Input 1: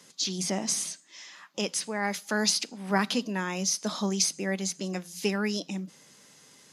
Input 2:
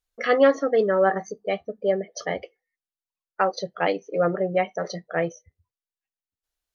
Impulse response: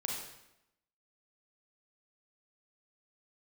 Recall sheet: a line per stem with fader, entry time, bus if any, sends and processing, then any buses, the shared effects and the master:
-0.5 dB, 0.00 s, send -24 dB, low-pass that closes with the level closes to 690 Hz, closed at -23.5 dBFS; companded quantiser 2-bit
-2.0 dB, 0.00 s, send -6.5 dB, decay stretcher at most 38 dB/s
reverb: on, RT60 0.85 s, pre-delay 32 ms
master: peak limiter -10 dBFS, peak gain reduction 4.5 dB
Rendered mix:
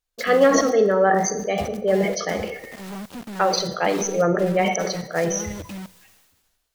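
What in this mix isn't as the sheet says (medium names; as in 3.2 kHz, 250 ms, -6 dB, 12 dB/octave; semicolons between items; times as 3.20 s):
stem 1 -0.5 dB -> -8.0 dB; master: missing peak limiter -10 dBFS, peak gain reduction 4.5 dB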